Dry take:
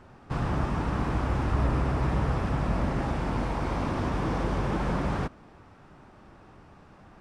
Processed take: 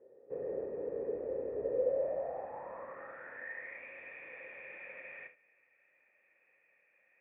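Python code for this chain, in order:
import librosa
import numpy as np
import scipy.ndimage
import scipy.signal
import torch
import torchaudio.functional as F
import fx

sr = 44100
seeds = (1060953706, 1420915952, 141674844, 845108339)

y = fx.filter_sweep_bandpass(x, sr, from_hz=430.0, to_hz=2400.0, start_s=1.64, end_s=3.87, q=7.1)
y = fx.formant_cascade(y, sr, vowel='e')
y = fx.room_early_taps(y, sr, ms=(33, 63, 75), db=(-9.5, -16.5, -15.0))
y = y * 10.0 ** (15.0 / 20.0)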